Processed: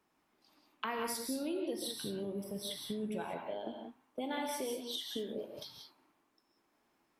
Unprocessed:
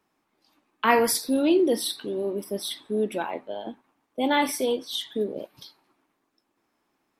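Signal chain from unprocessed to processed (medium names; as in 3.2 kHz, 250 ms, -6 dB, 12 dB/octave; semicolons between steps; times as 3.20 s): 1.78–3.34 s: resonant low shelf 210 Hz +9 dB, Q 1.5; compression 4:1, threshold -35 dBFS, peak gain reduction 17 dB; gated-style reverb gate 210 ms rising, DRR 2.5 dB; trim -3.5 dB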